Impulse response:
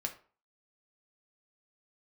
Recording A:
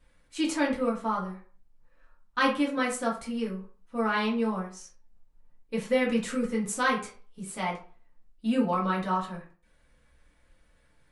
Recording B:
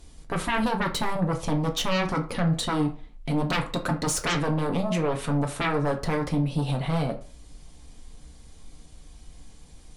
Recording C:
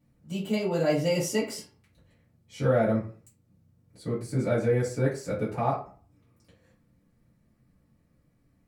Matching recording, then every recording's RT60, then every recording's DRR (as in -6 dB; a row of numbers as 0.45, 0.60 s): B; 0.40, 0.40, 0.40 s; -5.0, 3.0, -11.0 dB